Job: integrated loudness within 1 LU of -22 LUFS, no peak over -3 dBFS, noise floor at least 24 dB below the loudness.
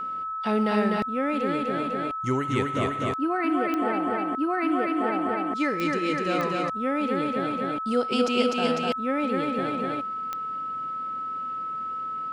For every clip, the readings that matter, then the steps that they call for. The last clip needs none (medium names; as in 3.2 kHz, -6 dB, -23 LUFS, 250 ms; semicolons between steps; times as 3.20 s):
clicks found 4; steady tone 1.3 kHz; tone level -29 dBFS; loudness -26.5 LUFS; peak level -11.0 dBFS; loudness target -22.0 LUFS
-> de-click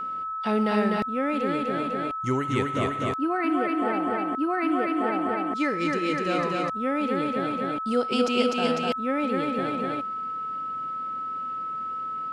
clicks found 0; steady tone 1.3 kHz; tone level -29 dBFS
-> band-stop 1.3 kHz, Q 30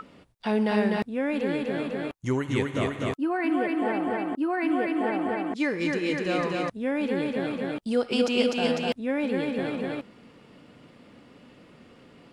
steady tone not found; loudness -27.5 LUFS; peak level -11.5 dBFS; loudness target -22.0 LUFS
-> trim +5.5 dB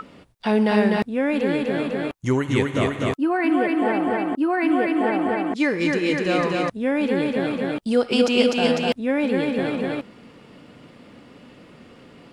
loudness -22.0 LUFS; peak level -6.0 dBFS; noise floor -49 dBFS